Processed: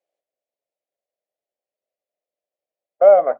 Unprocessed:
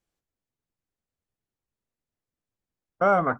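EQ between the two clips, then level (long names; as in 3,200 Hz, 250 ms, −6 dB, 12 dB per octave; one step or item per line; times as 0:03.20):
high-pass with resonance 590 Hz, resonance Q 5.4
flat-topped bell 1,200 Hz −9 dB 1.1 octaves
high-shelf EQ 3,900 Hz −12 dB
0.0 dB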